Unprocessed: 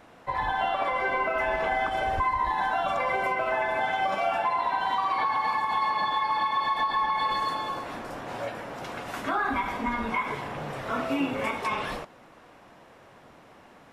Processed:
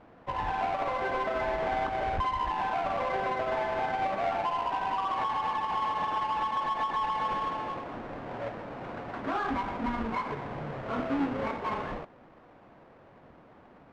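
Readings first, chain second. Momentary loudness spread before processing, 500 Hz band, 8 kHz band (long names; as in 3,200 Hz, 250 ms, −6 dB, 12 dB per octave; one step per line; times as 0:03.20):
9 LU, −2.0 dB, can't be measured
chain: each half-wave held at its own peak
low-pass filter 1,800 Hz 12 dB per octave
level −6 dB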